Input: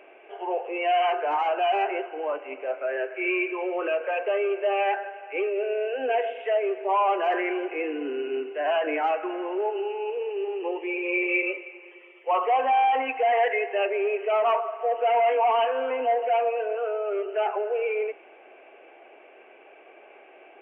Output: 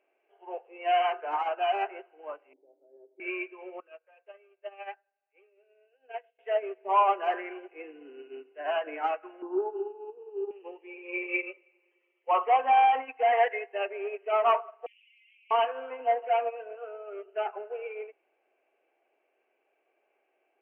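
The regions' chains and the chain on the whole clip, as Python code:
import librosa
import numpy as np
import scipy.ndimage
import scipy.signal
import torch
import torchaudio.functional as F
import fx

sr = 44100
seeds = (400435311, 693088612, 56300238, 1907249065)

y = fx.chain(x, sr, fx.formant_cascade(vowel='u'),
    fx.peak_eq(hz=420.0, db=11.0, octaves=1.5), at=(2.53, 3.2))
y = fx.chain(y, sr, fx.highpass(hz=600.0, slope=6),
    fx.upward_expand(threshold_db=-37.0, expansion=2.5), at=(3.8, 6.39))
y = fx.chain(y, sr, fx.lowpass(hz=1700.0, slope=12),
    fx.peak_eq(hz=300.0, db=10.0, octaves=0.94),
    fx.fixed_phaser(hz=570.0, stages=6), at=(9.42, 10.51))
y = fx.chain(y, sr, fx.steep_highpass(hz=2300.0, slope=72),
    fx.env_flatten(amount_pct=100), at=(14.86, 15.51))
y = fx.dynamic_eq(y, sr, hz=1300.0, q=1.5, threshold_db=-37.0, ratio=4.0, max_db=4)
y = fx.upward_expand(y, sr, threshold_db=-34.0, expansion=2.5)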